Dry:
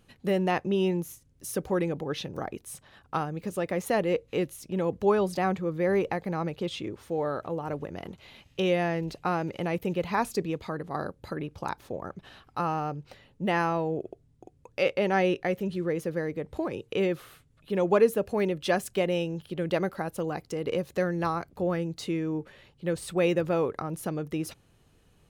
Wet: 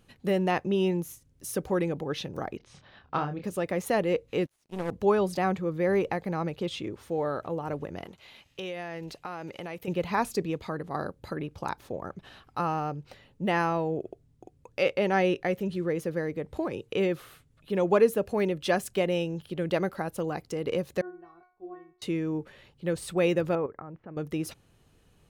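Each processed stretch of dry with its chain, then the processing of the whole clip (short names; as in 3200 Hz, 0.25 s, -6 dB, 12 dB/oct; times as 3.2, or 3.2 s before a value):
2.57–3.44 LPF 4900 Hz 24 dB/oct + doubler 28 ms -6 dB
4.46–4.91 delta modulation 64 kbps, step -47.5 dBFS + power-law curve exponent 2
8.05–9.88 low shelf 400 Hz -9 dB + compressor 5:1, threshold -33 dBFS
21.01–22.02 gate -44 dBFS, range -7 dB + LPF 1600 Hz + metallic resonator 360 Hz, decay 0.43 s, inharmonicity 0.002
23.55–24.17 LPF 2100 Hz 24 dB/oct + level quantiser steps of 14 dB
whole clip: dry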